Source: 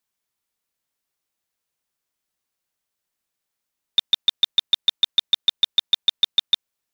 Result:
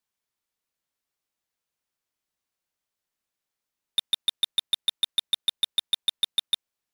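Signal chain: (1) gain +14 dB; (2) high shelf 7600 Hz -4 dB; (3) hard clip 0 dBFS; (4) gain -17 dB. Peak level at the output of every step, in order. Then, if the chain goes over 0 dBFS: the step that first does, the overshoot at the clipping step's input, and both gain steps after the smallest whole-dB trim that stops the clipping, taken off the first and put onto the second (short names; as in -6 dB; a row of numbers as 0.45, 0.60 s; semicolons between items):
+5.0, +4.5, 0.0, -17.0 dBFS; step 1, 4.5 dB; step 1 +9 dB, step 4 -12 dB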